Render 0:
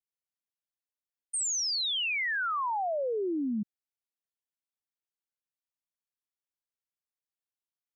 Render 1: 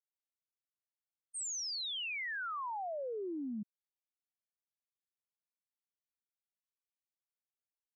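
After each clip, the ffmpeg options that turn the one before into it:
ffmpeg -i in.wav -af "agate=range=-33dB:threshold=-24dB:ratio=3:detection=peak" out.wav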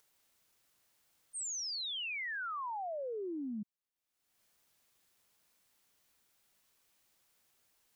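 ffmpeg -i in.wav -af "acompressor=mode=upward:threshold=-54dB:ratio=2.5" out.wav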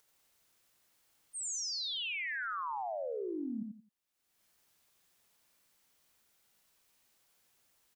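ffmpeg -i in.wav -af "aecho=1:1:87|174|261:0.631|0.158|0.0394" out.wav

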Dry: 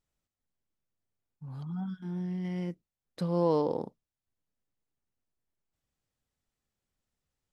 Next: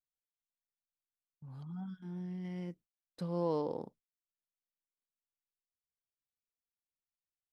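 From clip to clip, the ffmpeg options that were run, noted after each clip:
ffmpeg -i in.wav -af "agate=range=-17dB:threshold=-52dB:ratio=16:detection=peak,volume=-7dB" out.wav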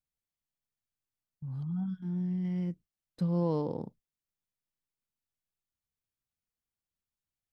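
ffmpeg -i in.wav -af "bass=frequency=250:gain=12,treble=frequency=4000:gain=-1" out.wav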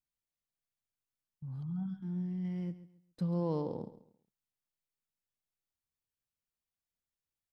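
ffmpeg -i in.wav -af "aecho=1:1:136|272|408:0.178|0.0498|0.0139,volume=-3.5dB" out.wav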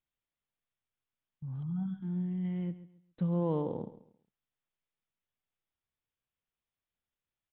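ffmpeg -i in.wav -af "aresample=8000,aresample=44100,volume=2.5dB" out.wav

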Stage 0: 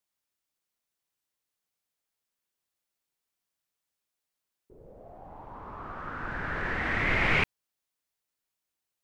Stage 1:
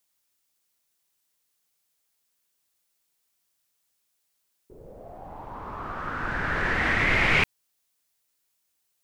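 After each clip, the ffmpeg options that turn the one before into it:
ffmpeg -i in.wav -filter_complex "[0:a]highshelf=frequency=3700:gain=7.5,asplit=2[link_01][link_02];[link_02]alimiter=limit=-19.5dB:level=0:latency=1:release=97,volume=2dB[link_03];[link_01][link_03]amix=inputs=2:normalize=0,volume=-2dB" out.wav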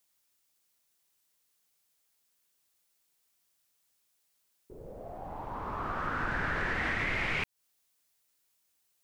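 ffmpeg -i in.wav -af "acompressor=threshold=-28dB:ratio=12" out.wav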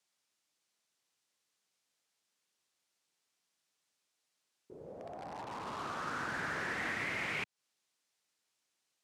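ffmpeg -i in.wav -filter_complex "[0:a]asplit=2[link_01][link_02];[link_02]aeval=exprs='(mod(53.1*val(0)+1,2)-1)/53.1':channel_layout=same,volume=-6.5dB[link_03];[link_01][link_03]amix=inputs=2:normalize=0,highpass=140,lowpass=7000,volume=-5dB" out.wav

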